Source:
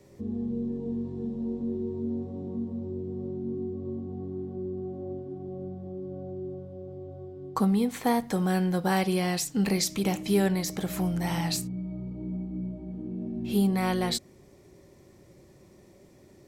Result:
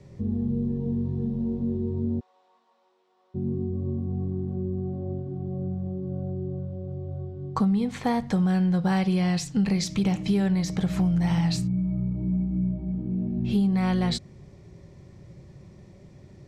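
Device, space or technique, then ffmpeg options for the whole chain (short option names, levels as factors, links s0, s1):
jukebox: -filter_complex "[0:a]lowpass=5700,lowshelf=f=210:t=q:w=1.5:g=8,acompressor=threshold=0.0794:ratio=5,asplit=3[s0][s1][s2];[s0]afade=t=out:st=2.19:d=0.02[s3];[s1]highpass=f=1000:w=0.5412,highpass=f=1000:w=1.3066,afade=t=in:st=2.19:d=0.02,afade=t=out:st=3.34:d=0.02[s4];[s2]afade=t=in:st=3.34:d=0.02[s5];[s3][s4][s5]amix=inputs=3:normalize=0,volume=1.26"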